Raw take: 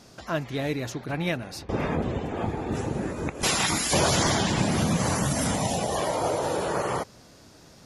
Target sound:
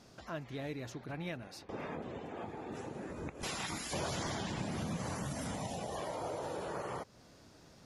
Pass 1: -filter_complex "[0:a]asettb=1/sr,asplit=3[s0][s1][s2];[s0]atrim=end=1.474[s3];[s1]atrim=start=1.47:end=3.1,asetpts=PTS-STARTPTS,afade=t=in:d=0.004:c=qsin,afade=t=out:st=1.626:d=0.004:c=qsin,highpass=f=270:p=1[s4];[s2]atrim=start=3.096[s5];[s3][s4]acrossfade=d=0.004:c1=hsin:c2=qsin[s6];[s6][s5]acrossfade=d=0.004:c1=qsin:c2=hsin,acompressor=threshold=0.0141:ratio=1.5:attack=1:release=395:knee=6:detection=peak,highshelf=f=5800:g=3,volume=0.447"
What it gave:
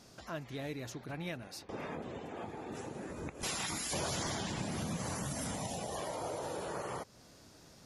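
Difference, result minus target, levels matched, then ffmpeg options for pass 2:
8 kHz band +4.0 dB
-filter_complex "[0:a]asettb=1/sr,asplit=3[s0][s1][s2];[s0]atrim=end=1.474[s3];[s1]atrim=start=1.47:end=3.1,asetpts=PTS-STARTPTS,afade=t=in:d=0.004:c=qsin,afade=t=out:st=1.626:d=0.004:c=qsin,highpass=f=270:p=1[s4];[s2]atrim=start=3.096[s5];[s3][s4]acrossfade=d=0.004:c1=hsin:c2=qsin[s6];[s6][s5]acrossfade=d=0.004:c1=qsin:c2=hsin,acompressor=threshold=0.0141:ratio=1.5:attack=1:release=395:knee=6:detection=peak,highshelf=f=5800:g=-5.5,volume=0.447"

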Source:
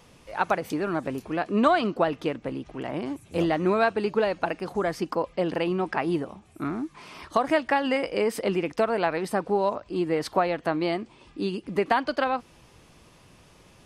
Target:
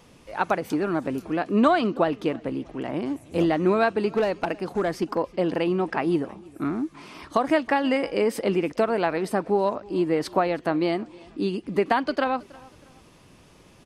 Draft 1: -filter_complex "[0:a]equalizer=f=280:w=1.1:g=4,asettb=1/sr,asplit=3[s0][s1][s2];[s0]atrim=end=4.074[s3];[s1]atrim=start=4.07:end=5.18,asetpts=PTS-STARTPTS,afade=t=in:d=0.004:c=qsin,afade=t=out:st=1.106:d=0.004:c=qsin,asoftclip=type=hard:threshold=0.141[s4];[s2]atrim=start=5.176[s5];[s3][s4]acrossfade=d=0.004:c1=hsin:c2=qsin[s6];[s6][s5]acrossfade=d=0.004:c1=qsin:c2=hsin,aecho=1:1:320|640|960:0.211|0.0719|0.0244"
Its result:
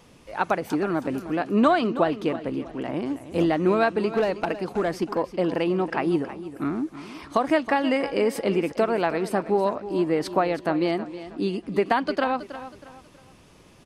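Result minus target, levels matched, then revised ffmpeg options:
echo-to-direct +10 dB
-filter_complex "[0:a]equalizer=f=280:w=1.1:g=4,asettb=1/sr,asplit=3[s0][s1][s2];[s0]atrim=end=4.074[s3];[s1]atrim=start=4.07:end=5.18,asetpts=PTS-STARTPTS,afade=t=in:d=0.004:c=qsin,afade=t=out:st=1.106:d=0.004:c=qsin,asoftclip=type=hard:threshold=0.141[s4];[s2]atrim=start=5.176[s5];[s3][s4]acrossfade=d=0.004:c1=hsin:c2=qsin[s6];[s6][s5]acrossfade=d=0.004:c1=qsin:c2=hsin,aecho=1:1:320|640:0.0668|0.0227"

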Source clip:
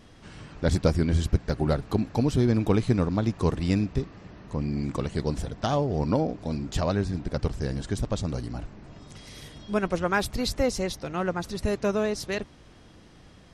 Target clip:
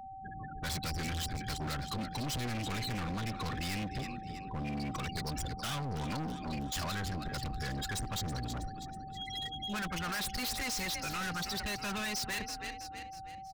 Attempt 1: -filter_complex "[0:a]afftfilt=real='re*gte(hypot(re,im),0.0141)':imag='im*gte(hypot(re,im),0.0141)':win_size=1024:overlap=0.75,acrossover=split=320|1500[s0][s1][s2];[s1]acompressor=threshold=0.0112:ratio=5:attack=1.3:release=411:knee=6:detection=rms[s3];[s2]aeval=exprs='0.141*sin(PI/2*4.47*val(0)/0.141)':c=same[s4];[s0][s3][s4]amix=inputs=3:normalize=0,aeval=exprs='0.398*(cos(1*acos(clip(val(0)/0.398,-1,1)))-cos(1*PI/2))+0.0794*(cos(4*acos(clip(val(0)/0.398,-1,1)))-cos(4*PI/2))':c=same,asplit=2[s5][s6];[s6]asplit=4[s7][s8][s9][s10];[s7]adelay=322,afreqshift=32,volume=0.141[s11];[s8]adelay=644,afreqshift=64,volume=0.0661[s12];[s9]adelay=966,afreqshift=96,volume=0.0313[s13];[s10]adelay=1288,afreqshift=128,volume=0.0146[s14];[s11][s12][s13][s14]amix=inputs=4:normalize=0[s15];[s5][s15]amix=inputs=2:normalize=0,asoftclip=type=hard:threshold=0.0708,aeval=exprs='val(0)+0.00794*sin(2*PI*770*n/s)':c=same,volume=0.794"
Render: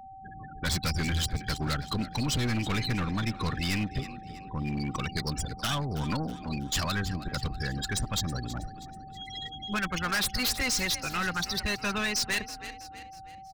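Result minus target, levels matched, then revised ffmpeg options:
hard clipper: distortion -5 dB
-filter_complex "[0:a]afftfilt=real='re*gte(hypot(re,im),0.0141)':imag='im*gte(hypot(re,im),0.0141)':win_size=1024:overlap=0.75,acrossover=split=320|1500[s0][s1][s2];[s1]acompressor=threshold=0.0112:ratio=5:attack=1.3:release=411:knee=6:detection=rms[s3];[s2]aeval=exprs='0.141*sin(PI/2*4.47*val(0)/0.141)':c=same[s4];[s0][s3][s4]amix=inputs=3:normalize=0,aeval=exprs='0.398*(cos(1*acos(clip(val(0)/0.398,-1,1)))-cos(1*PI/2))+0.0794*(cos(4*acos(clip(val(0)/0.398,-1,1)))-cos(4*PI/2))':c=same,asplit=2[s5][s6];[s6]asplit=4[s7][s8][s9][s10];[s7]adelay=322,afreqshift=32,volume=0.141[s11];[s8]adelay=644,afreqshift=64,volume=0.0661[s12];[s9]adelay=966,afreqshift=96,volume=0.0313[s13];[s10]adelay=1288,afreqshift=128,volume=0.0146[s14];[s11][s12][s13][s14]amix=inputs=4:normalize=0[s15];[s5][s15]amix=inputs=2:normalize=0,asoftclip=type=hard:threshold=0.0224,aeval=exprs='val(0)+0.00794*sin(2*PI*770*n/s)':c=same,volume=0.794"

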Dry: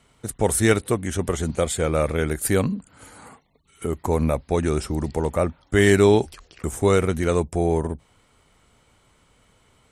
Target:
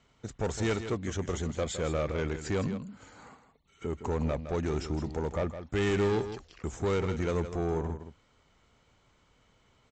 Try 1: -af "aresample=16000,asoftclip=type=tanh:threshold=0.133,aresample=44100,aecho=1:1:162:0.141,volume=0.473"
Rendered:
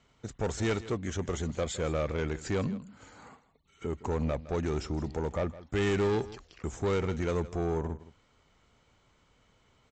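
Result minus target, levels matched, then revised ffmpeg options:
echo-to-direct -6.5 dB
-af "aresample=16000,asoftclip=type=tanh:threshold=0.133,aresample=44100,aecho=1:1:162:0.299,volume=0.473"

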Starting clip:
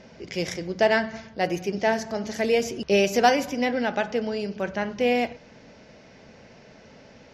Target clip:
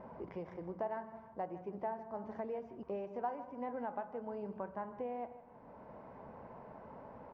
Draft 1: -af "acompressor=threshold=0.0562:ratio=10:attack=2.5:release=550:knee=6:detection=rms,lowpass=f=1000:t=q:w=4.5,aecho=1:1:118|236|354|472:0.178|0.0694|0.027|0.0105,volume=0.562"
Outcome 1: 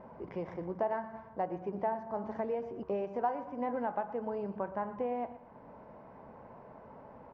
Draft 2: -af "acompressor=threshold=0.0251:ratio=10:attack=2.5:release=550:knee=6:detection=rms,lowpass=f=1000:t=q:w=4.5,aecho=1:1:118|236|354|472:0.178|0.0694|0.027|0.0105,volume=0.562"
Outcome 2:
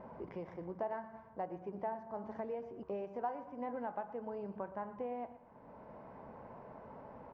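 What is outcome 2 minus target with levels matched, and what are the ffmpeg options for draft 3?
echo 40 ms early
-af "acompressor=threshold=0.0251:ratio=10:attack=2.5:release=550:knee=6:detection=rms,lowpass=f=1000:t=q:w=4.5,aecho=1:1:158|316|474|632:0.178|0.0694|0.027|0.0105,volume=0.562"

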